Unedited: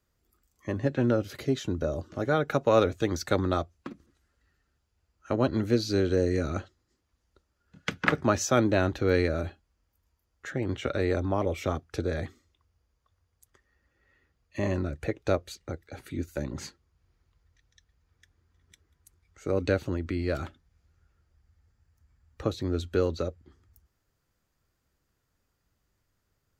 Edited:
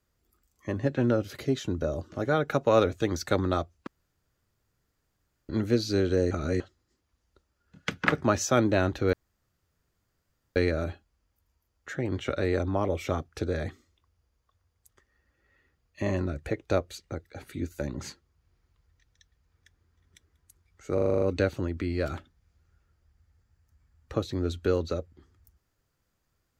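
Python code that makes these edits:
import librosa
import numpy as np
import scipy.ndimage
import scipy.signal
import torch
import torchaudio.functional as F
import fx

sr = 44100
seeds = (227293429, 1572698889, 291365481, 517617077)

y = fx.edit(x, sr, fx.room_tone_fill(start_s=3.87, length_s=1.62),
    fx.reverse_span(start_s=6.31, length_s=0.29),
    fx.insert_room_tone(at_s=9.13, length_s=1.43),
    fx.stutter(start_s=19.51, slice_s=0.04, count=8), tone=tone)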